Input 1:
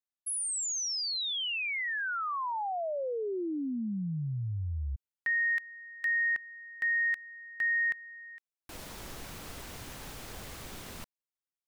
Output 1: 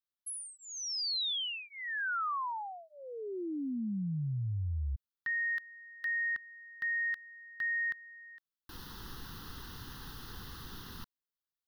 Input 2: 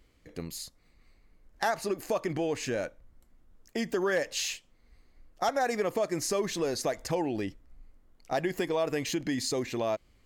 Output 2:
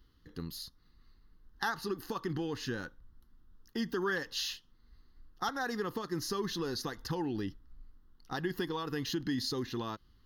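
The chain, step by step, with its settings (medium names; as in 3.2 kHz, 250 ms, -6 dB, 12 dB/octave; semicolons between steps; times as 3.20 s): static phaser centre 2.3 kHz, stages 6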